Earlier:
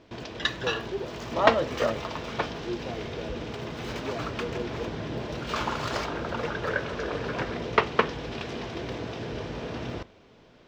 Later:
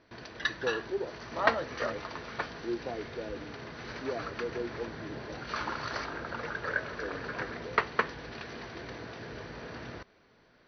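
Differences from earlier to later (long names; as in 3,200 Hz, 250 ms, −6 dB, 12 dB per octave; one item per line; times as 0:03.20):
background: add Chebyshev low-pass with heavy ripple 6,100 Hz, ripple 9 dB
reverb: off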